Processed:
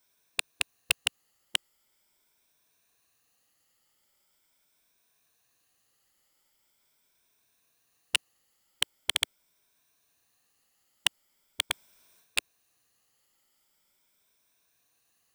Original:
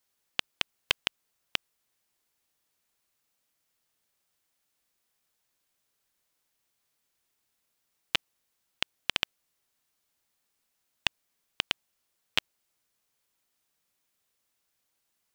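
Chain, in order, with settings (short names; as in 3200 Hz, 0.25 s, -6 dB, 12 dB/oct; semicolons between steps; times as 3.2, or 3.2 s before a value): moving spectral ripple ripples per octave 1.6, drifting +0.42 Hz, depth 9 dB; wavefolder -12 dBFS; 11.7–12.38 transient shaper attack -4 dB, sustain +9 dB; gain +5 dB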